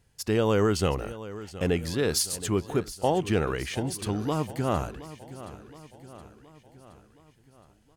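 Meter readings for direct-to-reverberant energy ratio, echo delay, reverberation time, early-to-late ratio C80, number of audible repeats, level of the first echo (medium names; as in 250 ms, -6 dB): no reverb, 720 ms, no reverb, no reverb, 4, -15.5 dB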